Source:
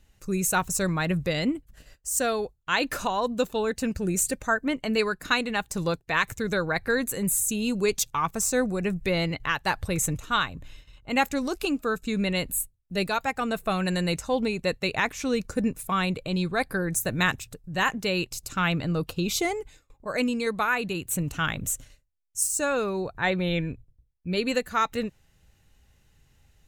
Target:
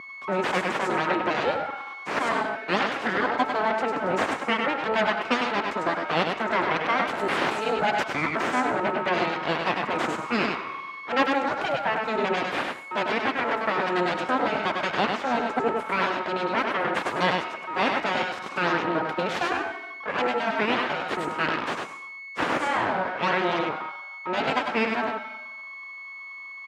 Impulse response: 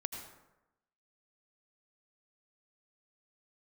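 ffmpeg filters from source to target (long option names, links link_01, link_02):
-filter_complex "[0:a]aecho=1:1:100:0.596,aeval=exprs='val(0)+0.0178*sin(2*PI*1100*n/s)':channel_layout=same,asplit=2[link_01][link_02];[1:a]atrim=start_sample=2205,highshelf=frequency=4000:gain=11.5[link_03];[link_02][link_03]afir=irnorm=-1:irlink=0,volume=-4dB[link_04];[link_01][link_04]amix=inputs=2:normalize=0,aeval=exprs='abs(val(0))':channel_layout=same,highpass=230,lowpass=2100,volume=2.5dB"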